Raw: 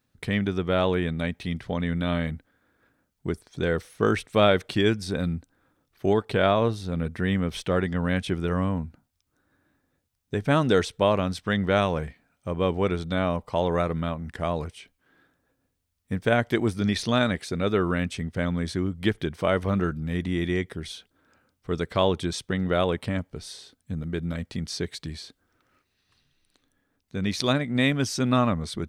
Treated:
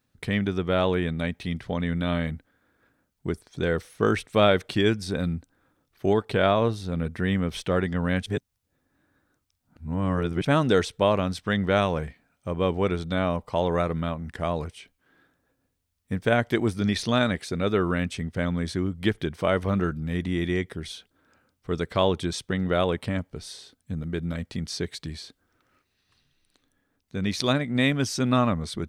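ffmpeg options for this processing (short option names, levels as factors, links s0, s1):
-filter_complex "[0:a]asplit=3[s0][s1][s2];[s0]atrim=end=8.262[s3];[s1]atrim=start=8.258:end=10.452,asetpts=PTS-STARTPTS,areverse[s4];[s2]atrim=start=10.448[s5];[s3][s4]acrossfade=d=0.004:c1=hsin:c2=hsin[s6];[s6][s5]acrossfade=d=0.004:c1=hsin:c2=hsin"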